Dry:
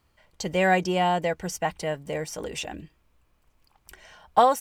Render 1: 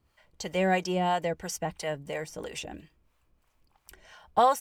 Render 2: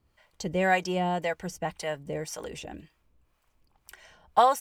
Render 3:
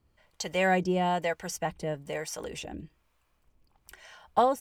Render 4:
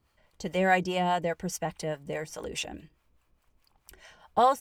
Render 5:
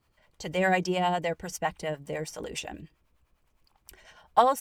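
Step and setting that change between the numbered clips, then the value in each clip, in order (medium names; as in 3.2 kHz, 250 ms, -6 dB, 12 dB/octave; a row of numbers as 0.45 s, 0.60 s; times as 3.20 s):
harmonic tremolo, rate: 3 Hz, 1.9 Hz, 1.1 Hz, 4.8 Hz, 9.9 Hz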